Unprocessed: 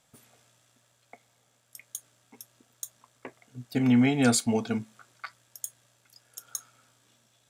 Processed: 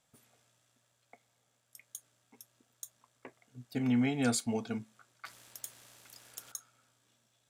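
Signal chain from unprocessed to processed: 5.25–6.52 spectral compressor 2:1; gain -7.5 dB

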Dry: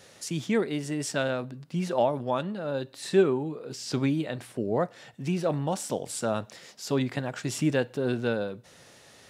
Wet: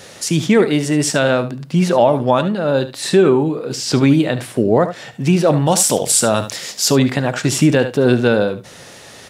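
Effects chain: 5.66–6.91 high shelf 3100 Hz +10 dB; on a send: echo 73 ms -13.5 dB; on the sum: maximiser +16.5 dB; gain -2 dB

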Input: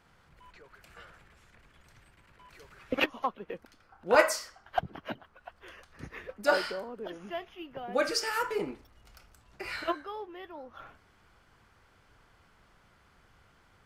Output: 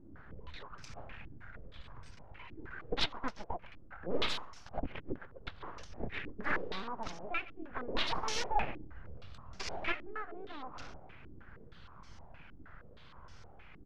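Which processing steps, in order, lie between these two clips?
low shelf 150 Hz +10 dB; in parallel at -0.5 dB: compressor, threshold -45 dBFS, peak gain reduction 27 dB; on the sum: hard clip -22.5 dBFS, distortion -8 dB; phaser 0.18 Hz, delay 2.6 ms, feedback 35%; full-wave rectifier; on a send: feedback echo 0.133 s, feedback 35%, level -20 dB; on the sum: stepped low-pass 6.4 Hz 310–5700 Hz; gain -3.5 dB

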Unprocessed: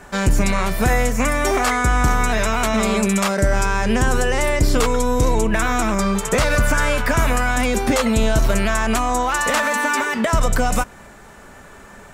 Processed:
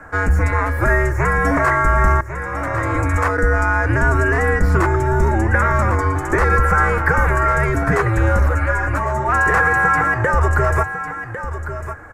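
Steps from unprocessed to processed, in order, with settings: resonant high shelf 2500 Hz -11.5 dB, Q 3; frequency shift -110 Hz; 2.21–3.15 fade in; echo 1.101 s -10.5 dB; 8.49–9.29 ensemble effect

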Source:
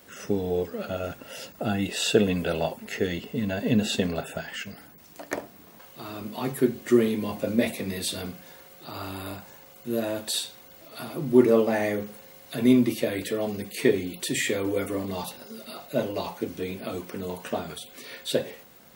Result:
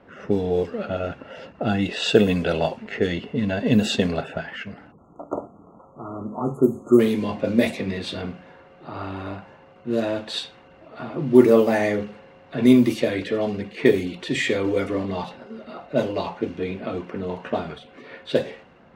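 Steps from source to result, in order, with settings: median filter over 3 samples; low-pass opened by the level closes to 1400 Hz, open at -18 dBFS; spectral delete 4.92–7, 1400–6300 Hz; gain +4.5 dB

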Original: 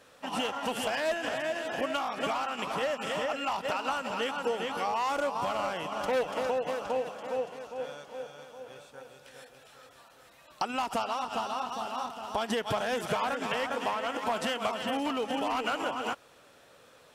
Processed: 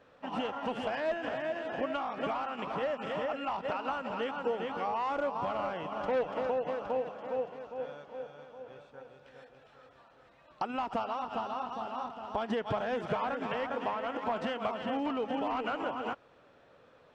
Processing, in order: tape spacing loss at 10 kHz 29 dB

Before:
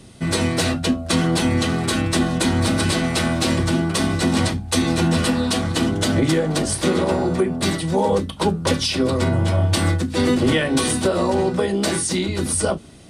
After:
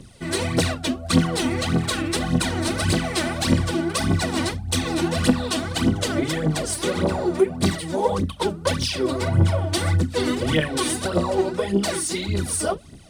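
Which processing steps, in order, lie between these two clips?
phaser 1.7 Hz, delay 3.5 ms, feedback 70%; gain -5.5 dB

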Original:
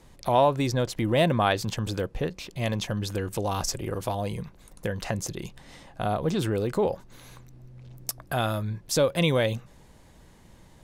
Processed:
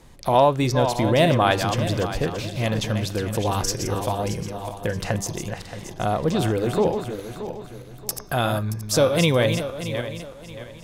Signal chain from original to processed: regenerating reverse delay 0.313 s, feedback 56%, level -7.5 dB; de-hum 199 Hz, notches 32; gain +4 dB

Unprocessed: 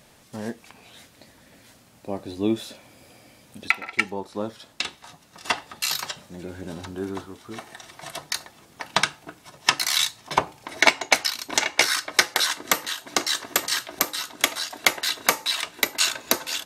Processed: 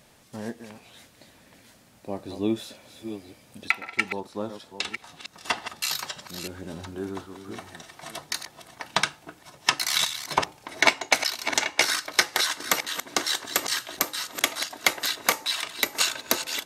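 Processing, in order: reverse delay 0.559 s, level -10 dB; gain -2.5 dB

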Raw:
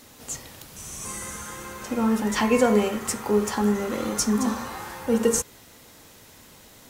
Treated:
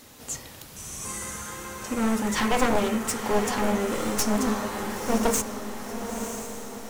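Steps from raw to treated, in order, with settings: one-sided fold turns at -22 dBFS; diffused feedback echo 0.977 s, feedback 51%, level -7.5 dB

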